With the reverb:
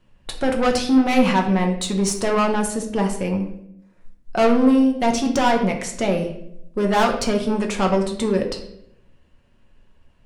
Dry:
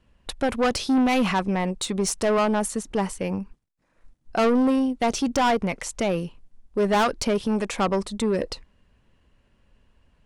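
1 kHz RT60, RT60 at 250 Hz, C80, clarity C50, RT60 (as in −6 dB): 0.60 s, 1.0 s, 11.0 dB, 8.5 dB, 0.75 s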